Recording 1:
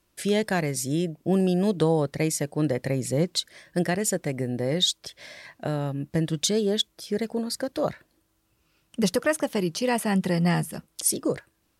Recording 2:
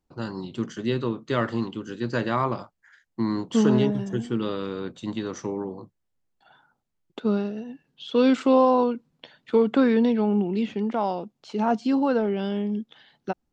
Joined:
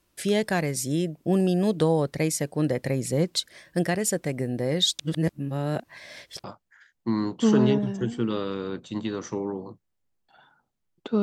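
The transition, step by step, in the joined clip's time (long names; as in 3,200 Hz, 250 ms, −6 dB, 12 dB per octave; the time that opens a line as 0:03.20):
recording 1
0:04.99–0:06.44: reverse
0:06.44: continue with recording 2 from 0:02.56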